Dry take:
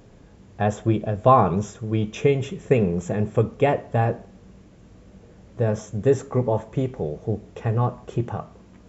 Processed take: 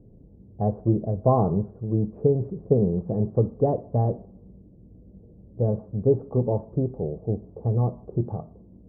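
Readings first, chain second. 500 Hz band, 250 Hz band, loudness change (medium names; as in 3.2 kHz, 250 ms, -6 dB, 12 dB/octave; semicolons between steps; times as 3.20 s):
-2.5 dB, -0.5 dB, -2.0 dB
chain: level-controlled noise filter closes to 400 Hz, open at -19.5 dBFS; Bessel low-pass 540 Hz, order 6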